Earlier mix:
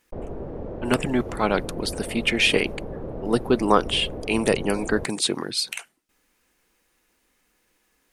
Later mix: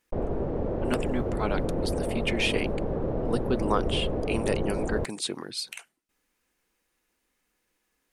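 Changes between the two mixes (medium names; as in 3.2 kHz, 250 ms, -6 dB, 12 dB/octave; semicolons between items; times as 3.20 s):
speech -8.0 dB; background +4.5 dB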